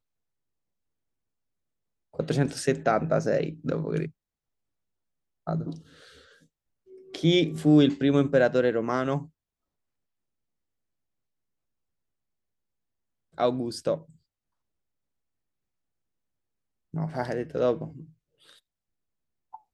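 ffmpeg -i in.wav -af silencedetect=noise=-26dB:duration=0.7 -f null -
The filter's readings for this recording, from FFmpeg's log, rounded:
silence_start: 0.00
silence_end: 2.19 | silence_duration: 2.19
silence_start: 4.05
silence_end: 5.47 | silence_duration: 1.43
silence_start: 5.70
silence_end: 7.15 | silence_duration: 1.45
silence_start: 9.18
silence_end: 13.40 | silence_duration: 4.21
silence_start: 13.95
silence_end: 16.96 | silence_duration: 3.02
silence_start: 17.84
silence_end: 19.74 | silence_duration: 1.90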